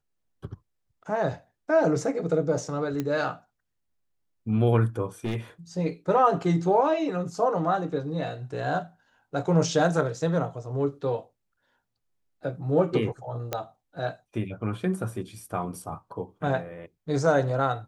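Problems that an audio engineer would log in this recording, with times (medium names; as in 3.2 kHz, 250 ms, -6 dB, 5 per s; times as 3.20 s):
3.00 s: pop -16 dBFS
5.25–5.36 s: clipped -24 dBFS
13.53 s: pop -13 dBFS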